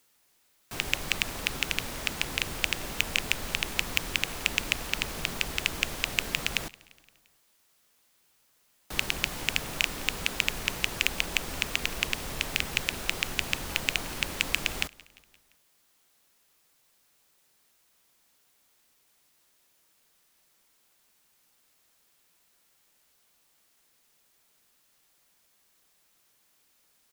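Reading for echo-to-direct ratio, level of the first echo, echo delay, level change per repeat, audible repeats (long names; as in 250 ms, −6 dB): −22.5 dB, −24.0 dB, 173 ms, −4.5 dB, 3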